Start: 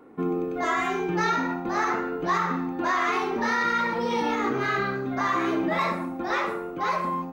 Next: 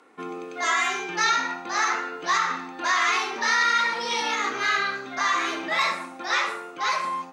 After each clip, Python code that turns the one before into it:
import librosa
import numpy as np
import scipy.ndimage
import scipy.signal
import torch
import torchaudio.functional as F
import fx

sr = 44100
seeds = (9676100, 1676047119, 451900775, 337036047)

y = fx.weighting(x, sr, curve='ITU-R 468')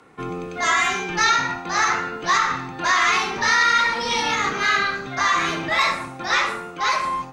y = fx.octave_divider(x, sr, octaves=1, level_db=-1.0)
y = y * librosa.db_to_amplitude(4.0)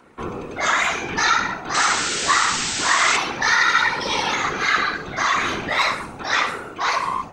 y = fx.whisperise(x, sr, seeds[0])
y = fx.spec_paint(y, sr, seeds[1], shape='noise', start_s=1.74, length_s=1.43, low_hz=1300.0, high_hz=8300.0, level_db=-25.0)